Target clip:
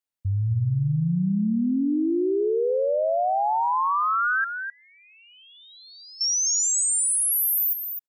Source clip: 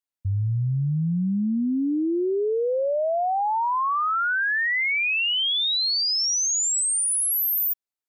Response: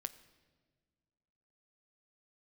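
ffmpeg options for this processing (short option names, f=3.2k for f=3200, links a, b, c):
-filter_complex "[0:a]asettb=1/sr,asplit=3[a][b][c];[a]atrim=end=4.444[d];[b]atrim=start=4.44:end=6.21,asetpts=PTS-STARTPTS,afade=t=in:d=0.004:c=qsin,afade=t=out:st=1.766:d=0.004:c=qsin,bandpass=f=7.6k:t=q:w=12:csg=0[e];[c]atrim=start=6.206[f];[d][e]acrossfade=d=0.004:c1=hsin:c2=qsin[g];[g][f]acrossfade=d=0.004:c1=qsin:c2=hsin,aecho=1:1:257:0.398"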